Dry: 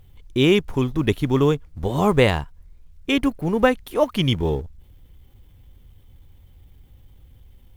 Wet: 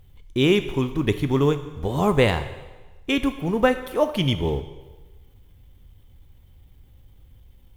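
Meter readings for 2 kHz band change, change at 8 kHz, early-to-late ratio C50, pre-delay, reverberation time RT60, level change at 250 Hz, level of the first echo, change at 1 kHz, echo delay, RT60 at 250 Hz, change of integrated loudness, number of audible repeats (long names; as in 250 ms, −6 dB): −1.5 dB, −1.5 dB, 12.0 dB, 6 ms, 1.2 s, −2.0 dB, no echo audible, −1.5 dB, no echo audible, 1.2 s, −1.5 dB, no echo audible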